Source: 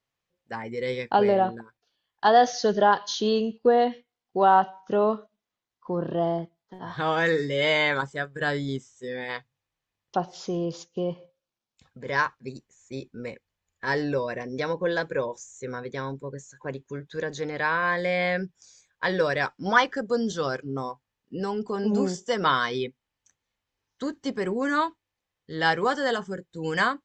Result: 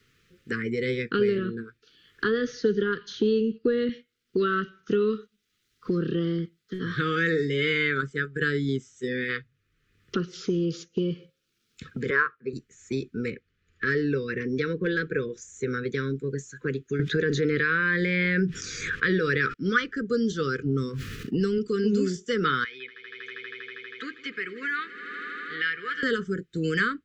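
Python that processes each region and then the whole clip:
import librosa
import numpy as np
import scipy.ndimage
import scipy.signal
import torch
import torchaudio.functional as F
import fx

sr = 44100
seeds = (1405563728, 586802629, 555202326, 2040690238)

y = fx.chain(x, sr, fx.high_shelf(hz=2700.0, db=-12.0),
    fx.band_squash(depth_pct=40), at=(1.38, 3.89))
y = fx.chain(y, sr, fx.bandpass_q(hz=820.0, q=0.71),
    fx.peak_eq(hz=880.0, db=14.5, octaves=1.8), at=(12.1, 12.53))
y = fx.chain(y, sr, fx.clip_hard(threshold_db=-17.5),
    fx.air_absorb(metres=110.0), at=(13.3, 15.42))
y = fx.chain(y, sr, fx.air_absorb(metres=61.0),
    fx.env_flatten(amount_pct=70), at=(16.99, 19.54))
y = fx.chain(y, sr, fx.low_shelf(hz=150.0, db=12.0),
    fx.sustainer(db_per_s=42.0), at=(20.58, 21.58))
y = fx.chain(y, sr, fx.bandpass_q(hz=2300.0, q=2.7),
    fx.echo_swell(ms=80, loudest=5, wet_db=-18.0), at=(22.64, 26.03))
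y = scipy.signal.sosfilt(scipy.signal.ellip(3, 1.0, 40, [450.0, 1300.0], 'bandstop', fs=sr, output='sos'), y)
y = fx.high_shelf(y, sr, hz=4500.0, db=-10.0)
y = fx.band_squash(y, sr, depth_pct=70)
y = F.gain(torch.from_numpy(y), 3.0).numpy()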